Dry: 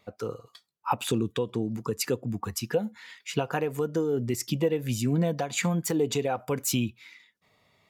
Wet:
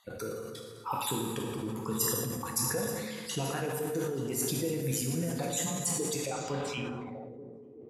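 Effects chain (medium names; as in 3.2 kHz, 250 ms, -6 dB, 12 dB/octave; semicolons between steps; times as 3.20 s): random holes in the spectrogram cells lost 32%; treble shelf 5.4 kHz +8 dB; compression 2:1, threshold -41 dBFS, peak gain reduction 11.5 dB; on a send: thinning echo 883 ms, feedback 58%, high-pass 230 Hz, level -17 dB; on the sum: plate-style reverb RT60 2.1 s, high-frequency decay 0.65×, DRR -0.5 dB; low-pass sweep 11 kHz -> 410 Hz, 6.24–7.37 s; decay stretcher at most 26 dB/s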